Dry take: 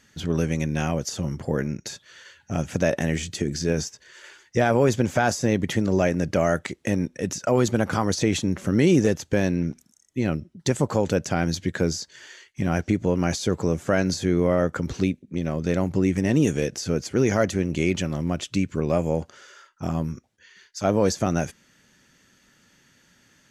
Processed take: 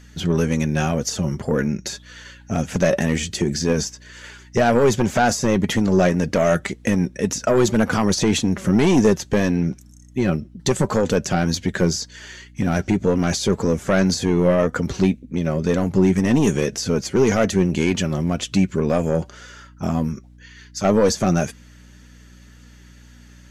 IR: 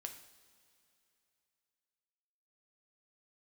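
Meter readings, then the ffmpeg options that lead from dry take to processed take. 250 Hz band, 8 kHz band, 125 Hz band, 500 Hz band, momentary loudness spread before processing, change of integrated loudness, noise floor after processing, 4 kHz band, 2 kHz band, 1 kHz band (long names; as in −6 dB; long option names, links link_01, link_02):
+4.5 dB, +5.5 dB, +3.5 dB, +4.0 dB, 8 LU, +4.0 dB, −46 dBFS, +5.5 dB, +3.5 dB, +4.5 dB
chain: -af "aeval=exprs='0.422*sin(PI/2*1.58*val(0)/0.422)':channel_layout=same,flanger=delay=3.9:depth=1.7:regen=53:speed=1.9:shape=triangular,aeval=exprs='val(0)+0.00447*(sin(2*PI*60*n/s)+sin(2*PI*2*60*n/s)/2+sin(2*PI*3*60*n/s)/3+sin(2*PI*4*60*n/s)/4+sin(2*PI*5*60*n/s)/5)':channel_layout=same,volume=2dB"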